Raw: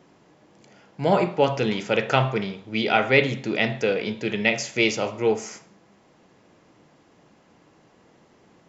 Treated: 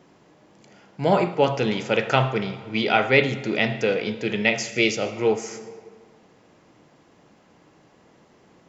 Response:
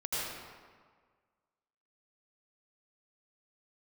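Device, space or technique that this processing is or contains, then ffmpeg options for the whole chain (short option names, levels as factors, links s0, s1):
compressed reverb return: -filter_complex "[0:a]asplit=2[s0][s1];[1:a]atrim=start_sample=2205[s2];[s1][s2]afir=irnorm=-1:irlink=0,acompressor=threshold=0.141:ratio=6,volume=0.15[s3];[s0][s3]amix=inputs=2:normalize=0,asettb=1/sr,asplit=3[s4][s5][s6];[s4]atrim=end=4.694[s7];[s5]atrim=start=4.69:end=5.17,asetpts=PTS-STARTPTS,afade=t=in:d=0.004:c=qsin,afade=t=out:st=0.476:d=0.004:c=qsin,equalizer=f=980:t=o:w=0.33:g=-13.5[s8];[s6]atrim=start=5.166[s9];[s7][s8]acrossfade=d=0.004:c1=hsin:c2=qsin[s10];[s10][s9]acrossfade=d=0.004:c1=qsin:c2=hsin"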